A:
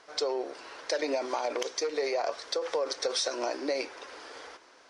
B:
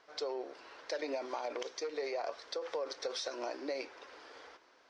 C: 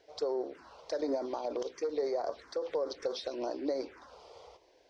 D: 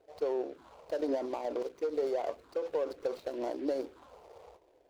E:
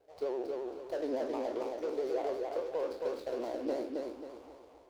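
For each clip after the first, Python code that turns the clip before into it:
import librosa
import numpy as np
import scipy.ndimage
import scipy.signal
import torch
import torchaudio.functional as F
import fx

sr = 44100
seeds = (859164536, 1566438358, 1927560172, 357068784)

y1 = scipy.signal.sosfilt(scipy.signal.butter(2, 5300.0, 'lowpass', fs=sr, output='sos'), x)
y1 = F.gain(torch.from_numpy(y1), -7.5).numpy()
y2 = fx.low_shelf(y1, sr, hz=470.0, db=11.5)
y2 = fx.env_phaser(y2, sr, low_hz=190.0, high_hz=2700.0, full_db=-29.5)
y2 = fx.peak_eq(y2, sr, hz=64.0, db=3.5, octaves=1.3)
y3 = scipy.ndimage.median_filter(y2, 25, mode='constant')
y3 = F.gain(torch.from_numpy(y3), 1.0).numpy()
y4 = fx.spec_trails(y3, sr, decay_s=0.41)
y4 = fx.vibrato(y4, sr, rate_hz=12.0, depth_cents=88.0)
y4 = fx.echo_feedback(y4, sr, ms=270, feedback_pct=36, wet_db=-3.0)
y4 = F.gain(torch.from_numpy(y4), -4.0).numpy()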